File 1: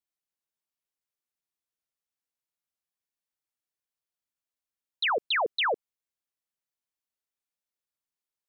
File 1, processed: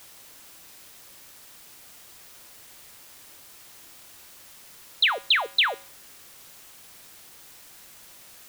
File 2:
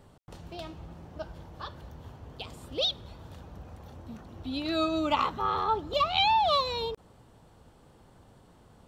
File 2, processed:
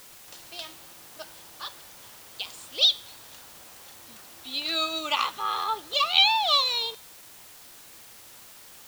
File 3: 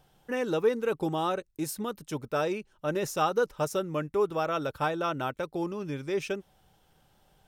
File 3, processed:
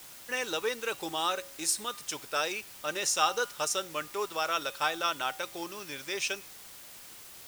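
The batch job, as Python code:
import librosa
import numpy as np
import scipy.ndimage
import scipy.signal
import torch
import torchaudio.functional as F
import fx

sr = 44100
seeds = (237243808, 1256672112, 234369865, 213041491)

y = fx.weighting(x, sr, curve='ITU-R 468')
y = fx.quant_dither(y, sr, seeds[0], bits=8, dither='triangular')
y = fx.comb_fb(y, sr, f0_hz=110.0, decay_s=0.46, harmonics='odd', damping=0.0, mix_pct=50)
y = F.gain(torch.from_numpy(y), 4.5).numpy()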